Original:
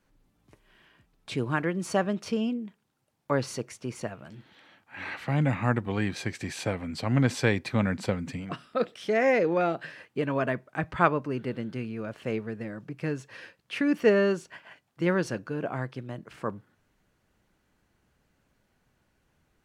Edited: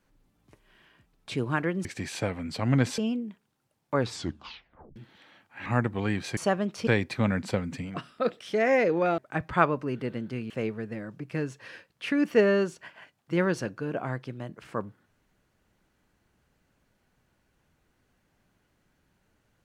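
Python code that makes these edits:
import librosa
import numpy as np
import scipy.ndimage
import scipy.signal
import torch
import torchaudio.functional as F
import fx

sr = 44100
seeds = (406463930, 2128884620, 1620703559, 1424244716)

y = fx.edit(x, sr, fx.swap(start_s=1.85, length_s=0.5, other_s=6.29, other_length_s=1.13),
    fx.tape_stop(start_s=3.34, length_s=0.99),
    fx.cut(start_s=5.03, length_s=0.55),
    fx.cut(start_s=9.73, length_s=0.88),
    fx.cut(start_s=11.93, length_s=0.26), tone=tone)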